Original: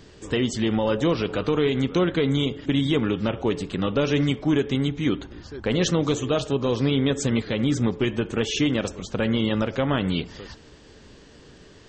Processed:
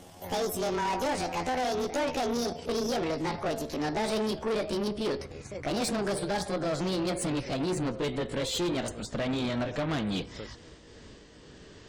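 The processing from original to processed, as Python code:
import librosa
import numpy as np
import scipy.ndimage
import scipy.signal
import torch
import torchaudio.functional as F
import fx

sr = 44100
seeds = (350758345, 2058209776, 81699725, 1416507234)

y = fx.pitch_glide(x, sr, semitones=10.5, runs='ending unshifted')
y = fx.tube_stage(y, sr, drive_db=26.0, bias=0.3)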